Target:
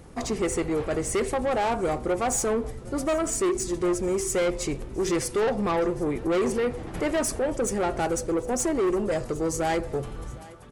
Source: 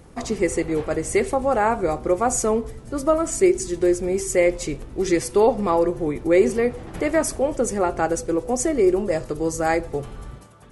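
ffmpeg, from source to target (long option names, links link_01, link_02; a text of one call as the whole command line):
ffmpeg -i in.wav -filter_complex "[0:a]asoftclip=type=tanh:threshold=-20.5dB,asplit=2[link_01][link_02];[link_02]aecho=0:1:759:0.0841[link_03];[link_01][link_03]amix=inputs=2:normalize=0" out.wav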